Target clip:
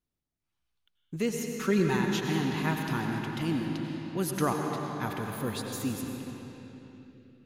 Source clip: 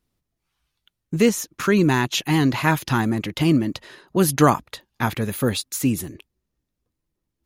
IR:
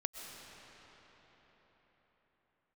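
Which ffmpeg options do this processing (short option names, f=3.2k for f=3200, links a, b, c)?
-filter_complex "[0:a]asettb=1/sr,asplit=3[a][b][c];[a]atrim=end=1.404[d];[b]atrim=start=1.4:end=1.97,asetpts=PTS-STARTPTS,afade=t=in:d=0.004:c=qsin,afade=t=out:st=0.566:d=0.004:c=qsin,aecho=1:1:5.3:0.93,atrim=end_sample=25137[e];[c]atrim=start=1.966[f];[d][e]acrossfade=d=0.004:c1=hsin:c2=qsin[g];[g][f]acrossfade=d=0.004:c1=qsin:c2=hsin[h];[1:a]atrim=start_sample=2205,asetrate=57330,aresample=44100[i];[h][i]afir=irnorm=-1:irlink=0,volume=-8.5dB"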